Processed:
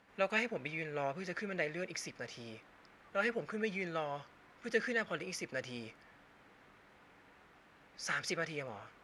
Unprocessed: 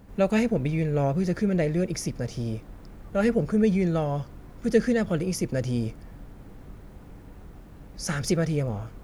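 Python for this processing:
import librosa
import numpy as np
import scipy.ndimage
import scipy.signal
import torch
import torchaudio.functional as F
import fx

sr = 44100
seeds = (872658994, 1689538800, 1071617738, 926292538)

y = fx.bandpass_q(x, sr, hz=2100.0, q=1.0)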